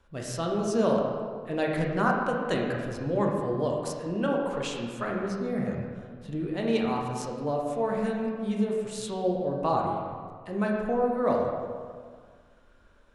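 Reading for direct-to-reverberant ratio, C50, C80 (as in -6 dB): -1.0 dB, 1.5 dB, 3.0 dB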